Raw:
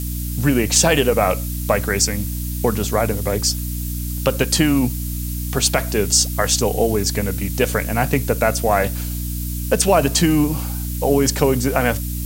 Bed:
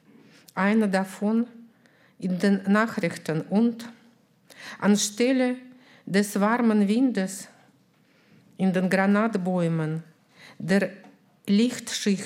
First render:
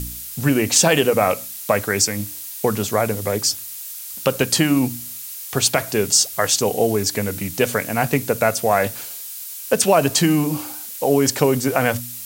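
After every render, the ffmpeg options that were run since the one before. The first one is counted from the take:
-af "bandreject=f=60:t=h:w=4,bandreject=f=120:t=h:w=4,bandreject=f=180:t=h:w=4,bandreject=f=240:t=h:w=4,bandreject=f=300:t=h:w=4"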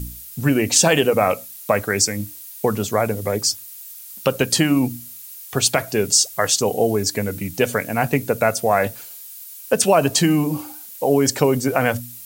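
-af "afftdn=nr=8:nf=-33"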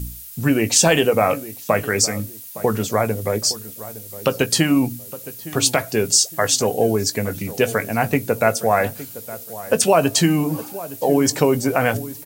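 -filter_complex "[0:a]asplit=2[a][b];[b]adelay=18,volume=-12.5dB[c];[a][c]amix=inputs=2:normalize=0,asplit=2[d][e];[e]adelay=863,lowpass=f=1.3k:p=1,volume=-15.5dB,asplit=2[f][g];[g]adelay=863,lowpass=f=1.3k:p=1,volume=0.33,asplit=2[h][i];[i]adelay=863,lowpass=f=1.3k:p=1,volume=0.33[j];[d][f][h][j]amix=inputs=4:normalize=0"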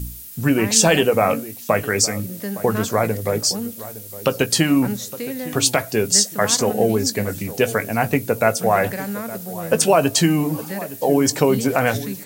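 -filter_complex "[1:a]volume=-7dB[a];[0:a][a]amix=inputs=2:normalize=0"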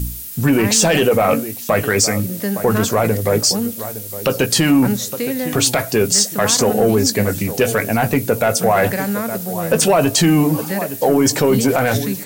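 -af "acontrast=69,alimiter=limit=-6.5dB:level=0:latency=1:release=12"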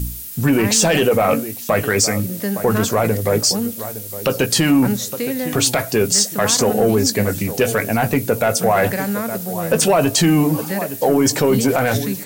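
-af "volume=-1dB"

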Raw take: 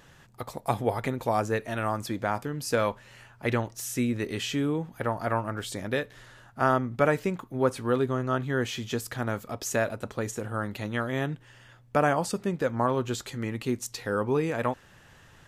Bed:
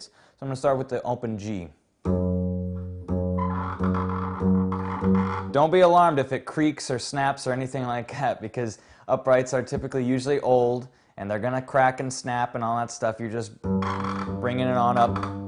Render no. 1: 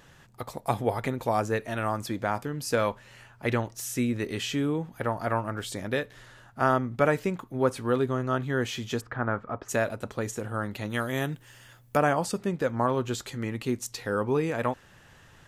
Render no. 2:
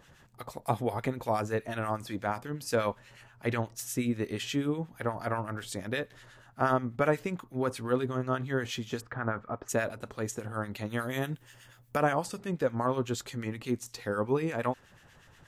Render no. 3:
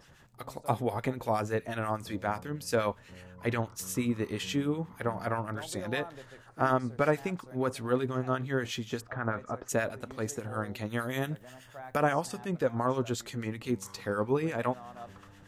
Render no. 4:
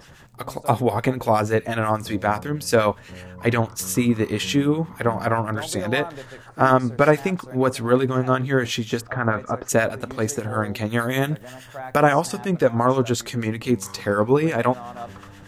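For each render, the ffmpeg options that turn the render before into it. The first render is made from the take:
-filter_complex "[0:a]asplit=3[a][b][c];[a]afade=t=out:st=9:d=0.02[d];[b]lowpass=f=1.4k:t=q:w=1.8,afade=t=in:st=9:d=0.02,afade=t=out:st=9.68:d=0.02[e];[c]afade=t=in:st=9.68:d=0.02[f];[d][e][f]amix=inputs=3:normalize=0,asplit=3[g][h][i];[g]afade=t=out:st=10.89:d=0.02[j];[h]aemphasis=mode=production:type=50fm,afade=t=in:st=10.89:d=0.02,afade=t=out:st=11.96:d=0.02[k];[i]afade=t=in:st=11.96:d=0.02[l];[j][k][l]amix=inputs=3:normalize=0"
-filter_complex "[0:a]acrossover=split=1300[a][b];[a]aeval=exprs='val(0)*(1-0.7/2+0.7/2*cos(2*PI*8.3*n/s))':c=same[c];[b]aeval=exprs='val(0)*(1-0.7/2-0.7/2*cos(2*PI*8.3*n/s))':c=same[d];[c][d]amix=inputs=2:normalize=0"
-filter_complex "[1:a]volume=-25.5dB[a];[0:a][a]amix=inputs=2:normalize=0"
-af "volume=10.5dB,alimiter=limit=-3dB:level=0:latency=1"

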